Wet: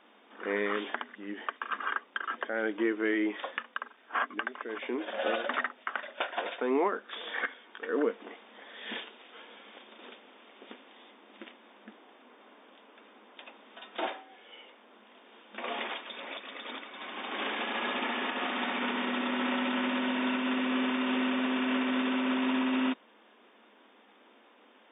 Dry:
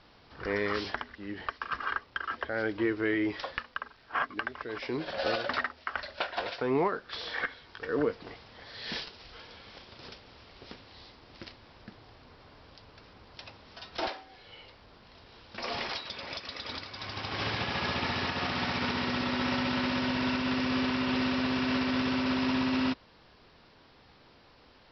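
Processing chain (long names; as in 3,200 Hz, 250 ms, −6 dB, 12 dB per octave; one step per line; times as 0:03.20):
brick-wall band-pass 200–3,700 Hz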